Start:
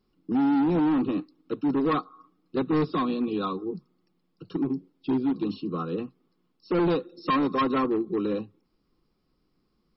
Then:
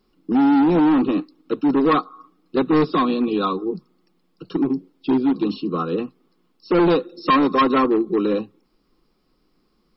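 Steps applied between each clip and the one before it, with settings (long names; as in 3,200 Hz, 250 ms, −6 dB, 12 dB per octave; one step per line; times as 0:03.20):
parametric band 92 Hz −11 dB 1.4 octaves
level +8.5 dB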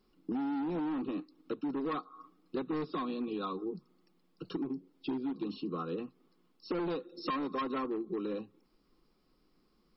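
downward compressor 4 to 1, threshold −29 dBFS, peak gain reduction 13.5 dB
level −6 dB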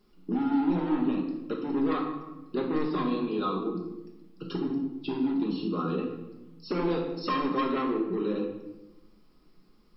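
rectangular room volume 420 cubic metres, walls mixed, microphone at 1.3 metres
level +3.5 dB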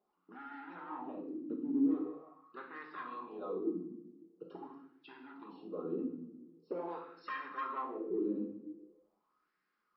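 LFO wah 0.44 Hz 250–1,700 Hz, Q 3.9
level −1 dB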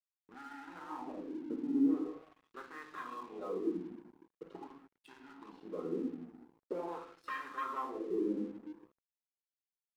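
dead-zone distortion −59.5 dBFS
level +1 dB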